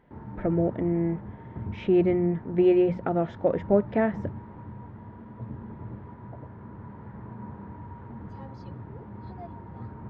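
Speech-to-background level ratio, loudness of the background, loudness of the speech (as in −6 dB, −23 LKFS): 16.0 dB, −41.5 LKFS, −25.5 LKFS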